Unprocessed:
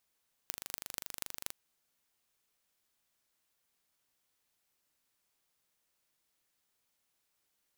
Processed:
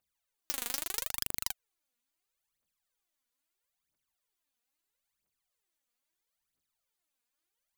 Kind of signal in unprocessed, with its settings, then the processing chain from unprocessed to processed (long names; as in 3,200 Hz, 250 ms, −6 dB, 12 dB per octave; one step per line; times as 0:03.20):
impulse train 24.9 per second, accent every 6, −8 dBFS 1.04 s
notch filter 5,400 Hz, Q 16
leveller curve on the samples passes 5
phase shifter 0.76 Hz, delay 4.3 ms, feedback 75%